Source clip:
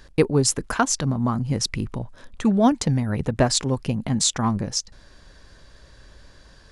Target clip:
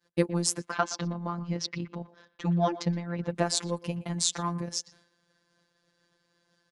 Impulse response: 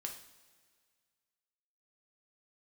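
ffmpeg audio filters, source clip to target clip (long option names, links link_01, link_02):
-filter_complex "[0:a]highpass=frequency=120:width=0.5412,highpass=frequency=120:width=1.3066,agate=range=-33dB:threshold=-45dB:ratio=3:detection=peak,asettb=1/sr,asplit=3[link_01][link_02][link_03];[link_01]atrim=end=0.704[link_04];[link_02]atrim=start=0.7:end=3.3,asetpts=PTS-STARTPTS,afade=type=in:duration=0.004:curve=qsin,afade=type=out:start_time=2.596:duration=0.004:curve=qsin,lowpass=frequency=5400:width=0.5412,lowpass=frequency=5400:width=1.3066[link_05];[link_03]atrim=start=3.296[link_06];[link_04][link_05]acrossfade=duration=0.004:curve1=hsin:curve2=qsin[link_07];[link_07][link_06]acrossfade=duration=0.004:curve1=qsin:curve2=hsin,afftfilt=real='hypot(re,im)*cos(PI*b)':imag='0':win_size=1024:overlap=0.75,asplit=2[link_08][link_09];[link_09]adelay=120,highpass=300,lowpass=3400,asoftclip=type=hard:threshold=-12.5dB,volume=-17dB[link_10];[link_08][link_10]amix=inputs=2:normalize=0,volume=-3dB"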